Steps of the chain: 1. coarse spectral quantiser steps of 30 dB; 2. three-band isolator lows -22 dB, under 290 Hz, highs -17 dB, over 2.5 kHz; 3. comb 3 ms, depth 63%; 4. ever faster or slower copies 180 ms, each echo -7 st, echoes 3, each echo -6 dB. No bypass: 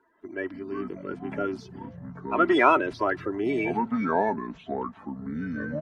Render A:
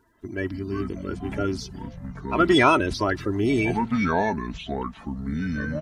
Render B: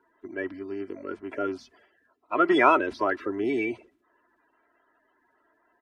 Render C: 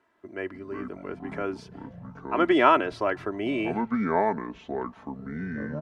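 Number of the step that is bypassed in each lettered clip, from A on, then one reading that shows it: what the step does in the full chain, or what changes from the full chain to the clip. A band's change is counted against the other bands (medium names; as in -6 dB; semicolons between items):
2, 4 kHz band +7.0 dB; 4, 125 Hz band -10.0 dB; 1, 4 kHz band +2.5 dB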